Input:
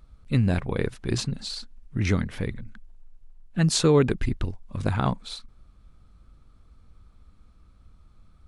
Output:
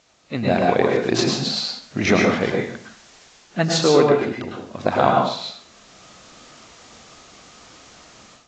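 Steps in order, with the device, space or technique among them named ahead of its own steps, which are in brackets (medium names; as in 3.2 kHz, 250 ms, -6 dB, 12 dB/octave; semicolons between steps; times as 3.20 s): filmed off a television (band-pass 250–6800 Hz; peaking EQ 680 Hz +10.5 dB 0.55 oct; reverberation RT60 0.50 s, pre-delay 99 ms, DRR -0.5 dB; white noise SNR 29 dB; level rider gain up to 14 dB; trim -1 dB; AAC 32 kbps 16 kHz)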